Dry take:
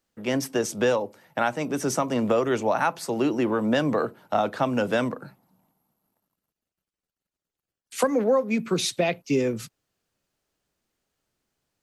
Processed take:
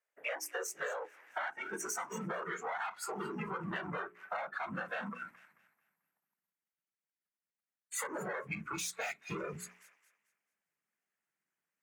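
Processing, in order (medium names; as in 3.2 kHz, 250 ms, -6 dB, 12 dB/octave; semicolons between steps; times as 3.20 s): high-pass 89 Hz 24 dB/octave; whisper effect; valve stage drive 29 dB, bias 0.6; on a send: feedback echo behind a high-pass 220 ms, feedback 33%, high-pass 1.4 kHz, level -8.5 dB; on the sum: spectral noise reduction 17 dB; graphic EQ 125/250/500/2000/4000 Hz -5/-10/-5/+10/-12 dB; high-pass sweep 510 Hz -> 190 Hz, 0.44–2.05 s; dynamic bell 6.2 kHz, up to +4 dB, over -55 dBFS, Q 2.2; hum notches 60/120/180/240/300/360/420 Hz; compression 6:1, threshold -46 dBFS, peak gain reduction 16.5 dB; trim +9 dB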